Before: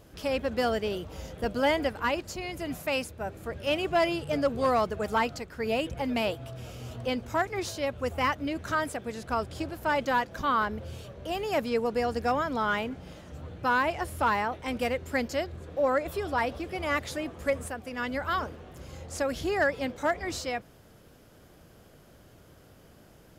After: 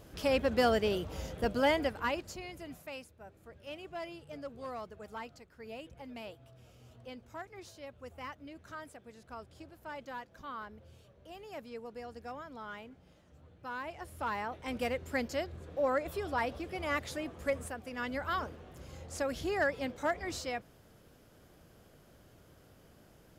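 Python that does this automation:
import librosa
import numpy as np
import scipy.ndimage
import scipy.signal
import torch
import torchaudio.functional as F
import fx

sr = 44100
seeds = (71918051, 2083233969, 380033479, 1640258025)

y = fx.gain(x, sr, db=fx.line((1.2, 0.0), (2.3, -6.5), (3.06, -17.0), (13.6, -17.0), (14.78, -5.0)))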